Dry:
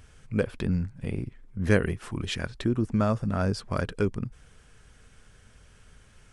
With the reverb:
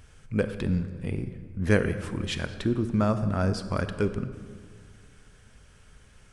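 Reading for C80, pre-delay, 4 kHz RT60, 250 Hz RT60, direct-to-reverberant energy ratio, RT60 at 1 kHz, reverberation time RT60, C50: 12.0 dB, 24 ms, 1.2 s, 2.2 s, 10.0 dB, 1.7 s, 1.8 s, 11.0 dB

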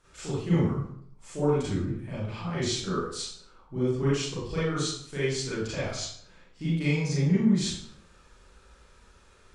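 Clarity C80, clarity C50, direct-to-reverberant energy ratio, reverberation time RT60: 3.5 dB, −1.5 dB, −10.5 dB, 0.65 s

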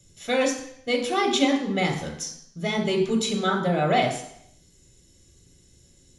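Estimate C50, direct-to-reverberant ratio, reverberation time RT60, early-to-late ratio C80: 6.0 dB, 1.0 dB, 0.70 s, 9.0 dB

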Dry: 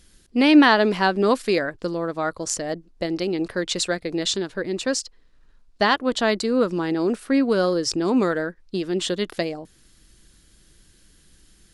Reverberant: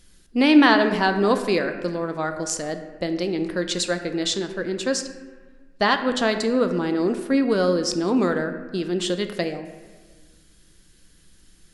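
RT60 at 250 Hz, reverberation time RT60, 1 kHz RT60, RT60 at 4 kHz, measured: 1.8 s, 1.4 s, 1.4 s, 0.95 s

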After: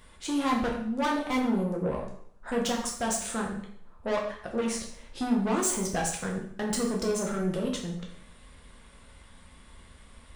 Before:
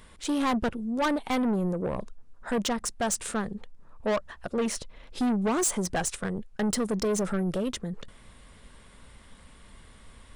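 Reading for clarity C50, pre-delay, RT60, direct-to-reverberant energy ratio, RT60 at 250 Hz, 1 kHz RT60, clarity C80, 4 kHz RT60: 5.5 dB, 4 ms, 0.65 s, −1.5 dB, 0.70 s, 0.65 s, 8.5 dB, 0.60 s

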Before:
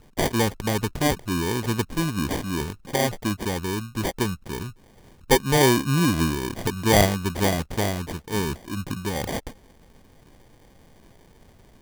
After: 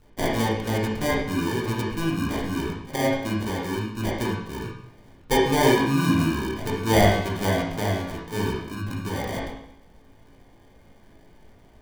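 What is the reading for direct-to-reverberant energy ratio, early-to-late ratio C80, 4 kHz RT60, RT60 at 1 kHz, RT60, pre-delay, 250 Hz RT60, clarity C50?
−5.0 dB, 5.5 dB, 0.70 s, 0.75 s, 0.75 s, 18 ms, 0.75 s, 1.0 dB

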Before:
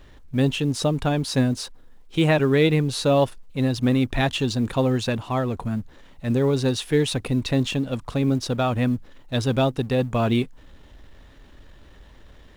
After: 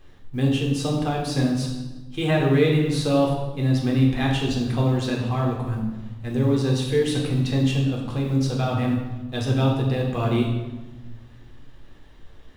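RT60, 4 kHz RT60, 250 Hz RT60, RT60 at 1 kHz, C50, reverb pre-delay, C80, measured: 1.2 s, 0.95 s, 1.8 s, 1.1 s, 3.5 dB, 3 ms, 5.5 dB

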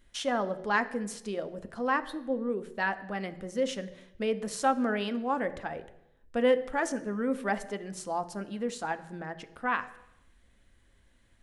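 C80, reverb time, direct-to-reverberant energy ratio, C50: 17.0 dB, 0.85 s, 10.0 dB, 15.5 dB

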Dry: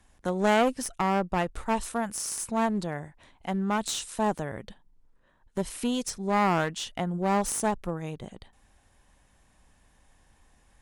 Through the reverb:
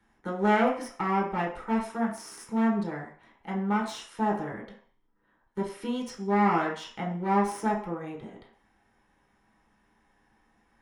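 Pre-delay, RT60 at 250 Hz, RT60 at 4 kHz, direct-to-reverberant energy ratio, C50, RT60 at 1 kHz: 3 ms, 0.35 s, 0.60 s, −3.5 dB, 6.5 dB, 0.55 s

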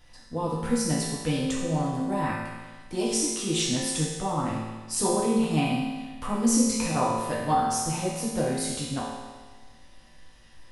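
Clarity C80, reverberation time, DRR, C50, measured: 2.0 dB, 1.4 s, −6.5 dB, −0.5 dB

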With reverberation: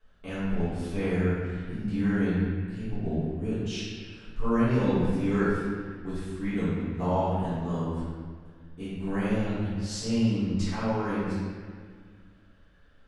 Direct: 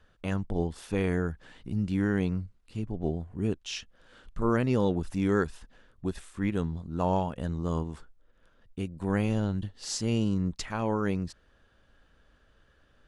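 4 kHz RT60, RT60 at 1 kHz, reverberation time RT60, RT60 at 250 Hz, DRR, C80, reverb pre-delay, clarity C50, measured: 1.4 s, 1.9 s, 1.9 s, 2.3 s, −14.5 dB, −0.5 dB, 3 ms, −3.0 dB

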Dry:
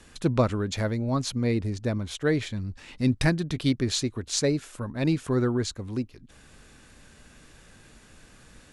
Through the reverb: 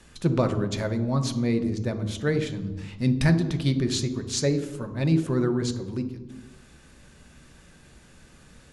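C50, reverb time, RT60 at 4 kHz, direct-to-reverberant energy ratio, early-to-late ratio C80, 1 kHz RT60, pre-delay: 10.5 dB, 1.2 s, 0.80 s, 7.5 dB, 13.0 dB, 1.1 s, 3 ms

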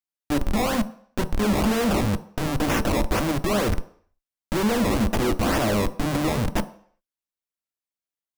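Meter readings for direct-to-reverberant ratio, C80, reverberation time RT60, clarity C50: 10.5 dB, 20.0 dB, 0.55 s, 17.0 dB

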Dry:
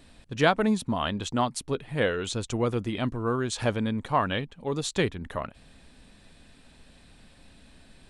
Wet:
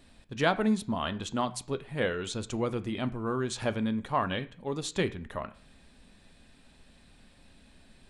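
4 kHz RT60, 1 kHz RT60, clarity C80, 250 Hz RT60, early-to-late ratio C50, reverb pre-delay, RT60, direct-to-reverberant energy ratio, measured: 0.45 s, 0.50 s, 21.5 dB, 0.60 s, 18.0 dB, 3 ms, 0.50 s, 11.0 dB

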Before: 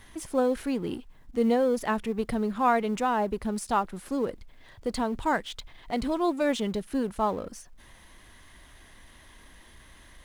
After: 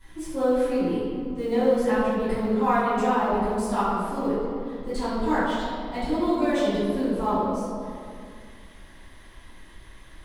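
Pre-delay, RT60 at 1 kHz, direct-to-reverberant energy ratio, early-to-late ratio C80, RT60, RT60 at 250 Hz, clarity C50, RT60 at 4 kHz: 3 ms, 2.2 s, −17.0 dB, −0.5 dB, 2.3 s, 2.8 s, −3.5 dB, 1.3 s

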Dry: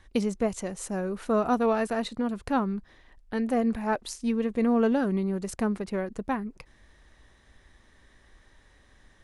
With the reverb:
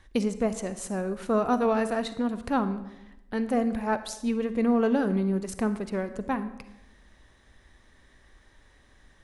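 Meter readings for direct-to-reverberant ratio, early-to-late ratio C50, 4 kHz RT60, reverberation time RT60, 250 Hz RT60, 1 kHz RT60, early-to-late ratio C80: 11.5 dB, 12.5 dB, 0.70 s, 0.90 s, 1.1 s, 0.85 s, 15.0 dB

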